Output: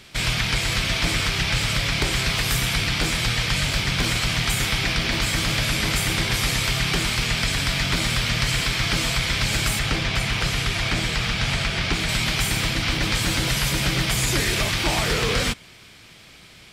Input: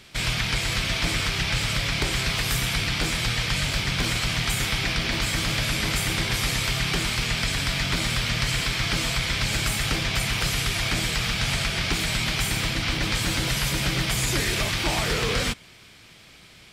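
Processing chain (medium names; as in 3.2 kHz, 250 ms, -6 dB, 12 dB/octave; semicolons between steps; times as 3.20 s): 9.79–12.09 s: treble shelf 8.4 kHz -12 dB; trim +2.5 dB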